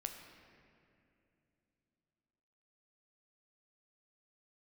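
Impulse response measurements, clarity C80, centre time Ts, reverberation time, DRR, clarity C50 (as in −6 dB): 7.0 dB, 47 ms, 2.7 s, 4.0 dB, 6.0 dB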